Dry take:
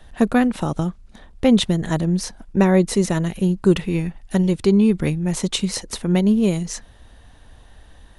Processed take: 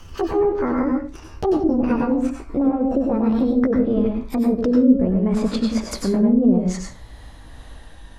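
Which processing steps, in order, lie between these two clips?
gliding pitch shift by +9 st ending unshifted; treble ducked by the level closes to 540 Hz, closed at -15 dBFS; limiter -17.5 dBFS, peak gain reduction 11.5 dB; dynamic EQ 2900 Hz, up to -7 dB, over -57 dBFS, Q 1.7; reverb RT60 0.30 s, pre-delay 89 ms, DRR 1.5 dB; gain +5 dB

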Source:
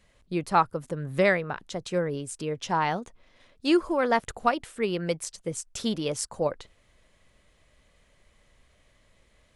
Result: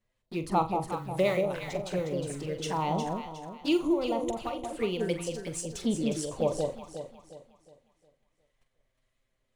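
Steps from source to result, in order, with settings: G.711 law mismatch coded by mu; envelope flanger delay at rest 9 ms, full sweep at -23.5 dBFS; 0.92–1.45 tilt +2 dB/oct; 3.93–4.73 compressor 2:1, threshold -32 dBFS, peak gain reduction 6.5 dB; 5.81–6.31 high shelf 4200 Hz -6.5 dB; flutter echo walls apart 7.5 m, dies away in 0.25 s; gate -49 dBFS, range -20 dB; harmonic tremolo 1.7 Hz, depth 50%, crossover 1100 Hz; echo with dull and thin repeats by turns 0.18 s, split 870 Hz, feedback 60%, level -2.5 dB

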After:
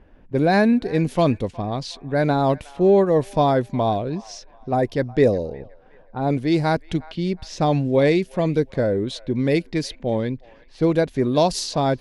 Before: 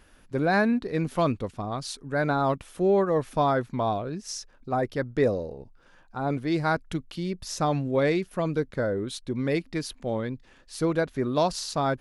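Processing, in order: low-pass opened by the level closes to 1300 Hz, open at -23.5 dBFS; bell 1300 Hz -10.5 dB 0.67 oct; band-limited delay 0.364 s, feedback 38%, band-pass 1400 Hz, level -20 dB; gain +7 dB

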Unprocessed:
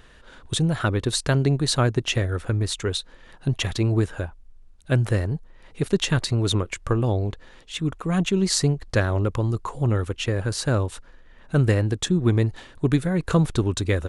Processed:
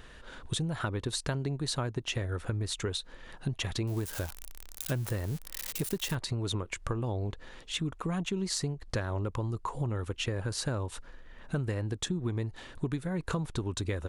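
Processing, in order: 3.87–6.15 switching spikes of -22 dBFS; dynamic EQ 940 Hz, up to +5 dB, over -44 dBFS, Q 3.8; hard clip -8 dBFS, distortion -49 dB; compressor 6:1, threshold -30 dBFS, peak gain reduction 15.5 dB

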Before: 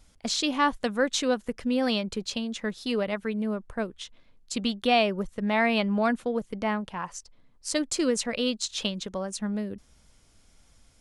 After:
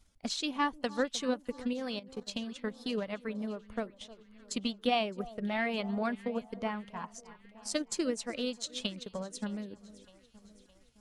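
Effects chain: bin magnitudes rounded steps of 15 dB; echo with dull and thin repeats by turns 0.307 s, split 1200 Hz, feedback 70%, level -14 dB; transient shaper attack +5 dB, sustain -4 dB; 1.73–2.27 level quantiser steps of 14 dB; 5.22–5.69 notch 980 Hz, Q 5.1; gain -8.5 dB

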